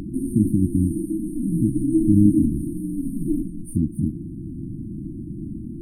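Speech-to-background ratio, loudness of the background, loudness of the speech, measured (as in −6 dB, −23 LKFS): 2.5 dB, −26.0 LKFS, −23.5 LKFS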